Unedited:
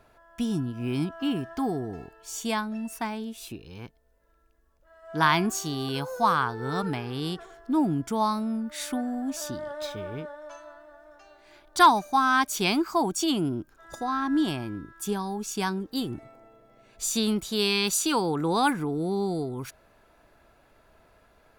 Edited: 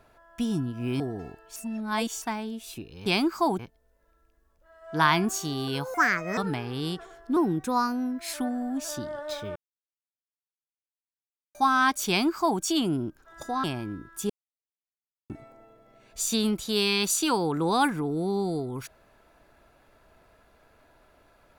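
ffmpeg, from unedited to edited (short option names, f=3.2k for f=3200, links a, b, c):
-filter_complex "[0:a]asplit=15[a][b][c][d][e][f][g][h][i][j][k][l][m][n][o];[a]atrim=end=1.002[p];[b]atrim=start=1.738:end=2.302[q];[c]atrim=start=2.298:end=2.962,asetpts=PTS-STARTPTS,areverse[r];[d]atrim=start=2.958:end=3.802[s];[e]atrim=start=12.598:end=13.132[t];[f]atrim=start=3.798:end=6.154[u];[g]atrim=start=6.15:end=6.77,asetpts=PTS-STARTPTS,asetrate=63063,aresample=44100,atrim=end_sample=19120,asetpts=PTS-STARTPTS[v];[h]atrim=start=6.766:end=7.764[w];[i]atrim=start=7.76:end=8.86,asetpts=PTS-STARTPTS,asetrate=49833,aresample=44100,atrim=end_sample=42929,asetpts=PTS-STARTPTS[x];[j]atrim=start=8.856:end=10.08,asetpts=PTS-STARTPTS,afade=t=out:st=1.22:d=0.004:c=hsin[y];[k]atrim=start=10.08:end=12.07,asetpts=PTS-STARTPTS,volume=0[z];[l]atrim=start=12.07:end=14.162,asetpts=PTS-STARTPTS,afade=t=in:d=0.004:c=hsin[aa];[m]atrim=start=14.468:end=15.13,asetpts=PTS-STARTPTS,afade=t=out:st=0.658:d=0.004:c=hsin[ab];[n]atrim=start=15.13:end=16.13,asetpts=PTS-STARTPTS,volume=0[ac];[o]atrim=start=16.13,asetpts=PTS-STARTPTS,afade=t=in:d=0.004:c=hsin[ad];[p][q]acrossfade=d=0.004:c1=hsin:c2=hsin[ae];[ae][r]acrossfade=d=0.004:c1=hsin:c2=hsin[af];[af][s]acrossfade=d=0.004:c1=hsin:c2=hsin[ag];[ag][t]acrossfade=d=0.004:c1=hsin:c2=hsin[ah];[ah][u]acrossfade=d=0.004:c1=hsin:c2=hsin[ai];[ai][v]acrossfade=d=0.004:c1=hsin:c2=hsin[aj];[aj][w]acrossfade=d=0.004:c1=hsin:c2=hsin[ak];[ak][x]acrossfade=d=0.004:c1=hsin:c2=hsin[al];[y][z][aa]concat=n=3:v=0:a=1[am];[al][am]acrossfade=d=0.004:c1=hsin:c2=hsin[an];[ab][ac][ad]concat=n=3:v=0:a=1[ao];[an][ao]acrossfade=d=0.004:c1=hsin:c2=hsin"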